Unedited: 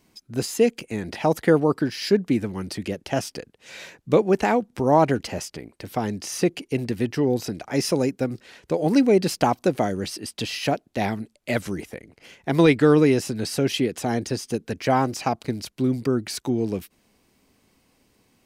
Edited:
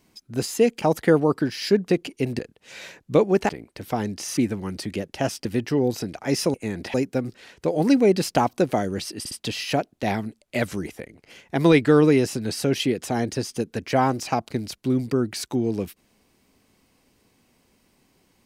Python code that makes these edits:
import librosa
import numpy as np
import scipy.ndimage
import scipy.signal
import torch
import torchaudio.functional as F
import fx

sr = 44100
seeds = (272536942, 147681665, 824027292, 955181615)

y = fx.edit(x, sr, fx.move(start_s=0.82, length_s=0.4, to_s=8.0),
    fx.swap(start_s=2.29, length_s=1.08, other_s=6.41, other_length_s=0.5),
    fx.cut(start_s=4.47, length_s=1.06),
    fx.stutter(start_s=10.25, slice_s=0.06, count=3), tone=tone)